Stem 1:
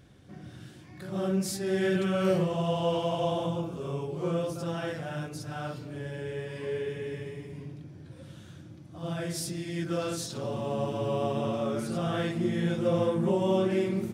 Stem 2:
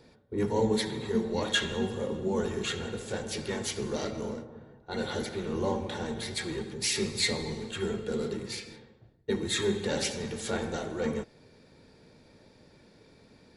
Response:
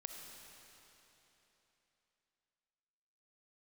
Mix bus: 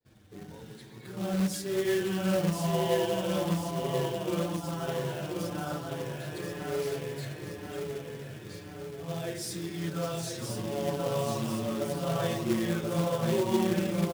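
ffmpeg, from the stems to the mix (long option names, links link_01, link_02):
-filter_complex "[0:a]asplit=2[link_01][link_02];[link_02]adelay=5.9,afreqshift=-0.96[link_03];[link_01][link_03]amix=inputs=2:normalize=1,adelay=50,volume=0.5dB,asplit=2[link_04][link_05];[link_05]volume=-4.5dB[link_06];[1:a]acompressor=threshold=-36dB:ratio=6,volume=-11.5dB[link_07];[link_06]aecho=0:1:1034|2068|3102|4136|5170|6204|7238|8272:1|0.54|0.292|0.157|0.085|0.0459|0.0248|0.0134[link_08];[link_04][link_07][link_08]amix=inputs=3:normalize=0,agate=range=-33dB:threshold=-59dB:ratio=3:detection=peak,acrusher=bits=3:mode=log:mix=0:aa=0.000001"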